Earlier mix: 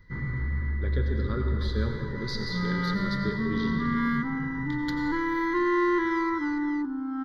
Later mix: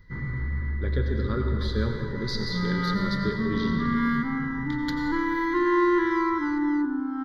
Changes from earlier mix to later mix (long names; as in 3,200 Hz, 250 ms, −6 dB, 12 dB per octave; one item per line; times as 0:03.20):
speech +3.0 dB
second sound: send +9.5 dB